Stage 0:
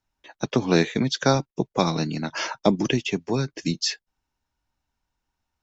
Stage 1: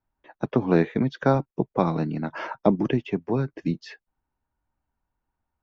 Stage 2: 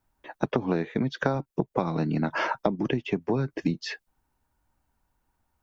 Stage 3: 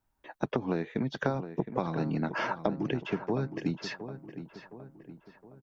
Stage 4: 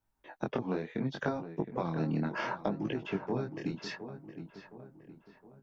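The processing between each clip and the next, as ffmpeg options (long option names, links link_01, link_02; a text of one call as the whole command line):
ffmpeg -i in.wav -af "lowpass=1500" out.wav
ffmpeg -i in.wav -af "highshelf=frequency=4200:gain=6,acompressor=threshold=-28dB:ratio=16,volume=6.5dB" out.wav
ffmpeg -i in.wav -filter_complex "[0:a]asplit=2[link_01][link_02];[link_02]adelay=715,lowpass=frequency=2300:poles=1,volume=-11dB,asplit=2[link_03][link_04];[link_04]adelay=715,lowpass=frequency=2300:poles=1,volume=0.49,asplit=2[link_05][link_06];[link_06]adelay=715,lowpass=frequency=2300:poles=1,volume=0.49,asplit=2[link_07][link_08];[link_08]adelay=715,lowpass=frequency=2300:poles=1,volume=0.49,asplit=2[link_09][link_10];[link_10]adelay=715,lowpass=frequency=2300:poles=1,volume=0.49[link_11];[link_01][link_03][link_05][link_07][link_09][link_11]amix=inputs=6:normalize=0,volume=-4.5dB" out.wav
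ffmpeg -i in.wav -af "flanger=delay=18.5:depth=7.7:speed=0.69" out.wav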